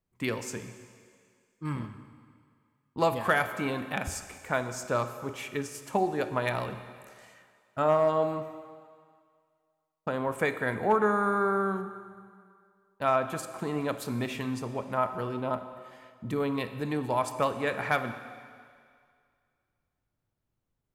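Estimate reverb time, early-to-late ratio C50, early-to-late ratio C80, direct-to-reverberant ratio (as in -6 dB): 2.1 s, 10.5 dB, 11.5 dB, 10.0 dB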